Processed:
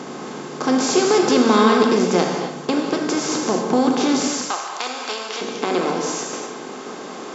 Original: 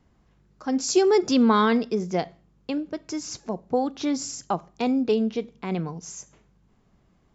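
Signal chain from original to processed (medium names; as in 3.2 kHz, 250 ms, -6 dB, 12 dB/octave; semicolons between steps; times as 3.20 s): spectral levelling over time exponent 0.4; high-pass 140 Hz 12 dB/octave, from 4.28 s 1 kHz, from 5.41 s 290 Hz; gated-style reverb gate 280 ms flat, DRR 2 dB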